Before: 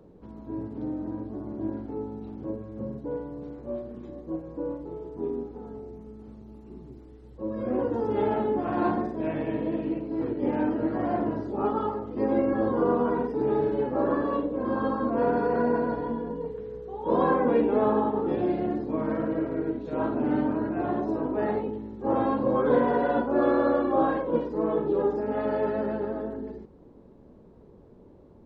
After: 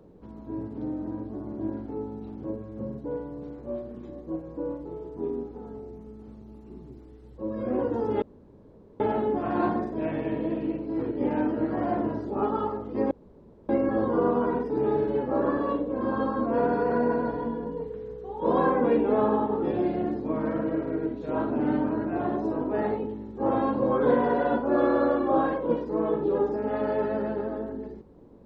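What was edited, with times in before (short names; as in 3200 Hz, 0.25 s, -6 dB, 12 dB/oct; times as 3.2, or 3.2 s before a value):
8.22 insert room tone 0.78 s
12.33 insert room tone 0.58 s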